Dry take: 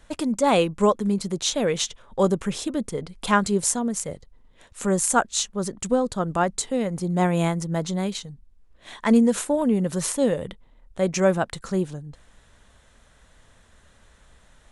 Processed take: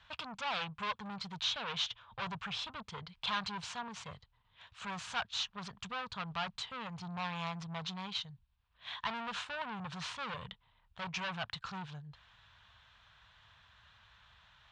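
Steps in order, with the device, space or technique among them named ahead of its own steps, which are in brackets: scooped metal amplifier (valve stage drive 28 dB, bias 0.45; cabinet simulation 100–3700 Hz, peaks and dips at 110 Hz +6 dB, 360 Hz -7 dB, 540 Hz -8 dB, 1 kHz +4 dB, 2 kHz -6 dB; amplifier tone stack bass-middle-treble 10-0-10); trim +6.5 dB

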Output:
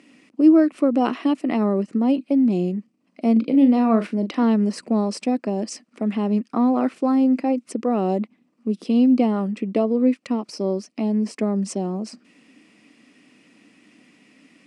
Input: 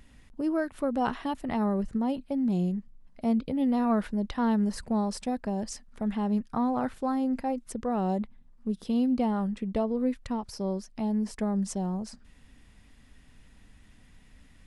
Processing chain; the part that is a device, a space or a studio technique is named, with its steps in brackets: 3.32–4.43 s: doubling 40 ms -10 dB; television speaker (cabinet simulation 210–8400 Hz, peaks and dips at 310 Hz +8 dB, 880 Hz -8 dB, 1.6 kHz -8 dB, 2.5 kHz +5 dB, 3.6 kHz -7 dB, 6.8 kHz -5 dB); trim +8.5 dB

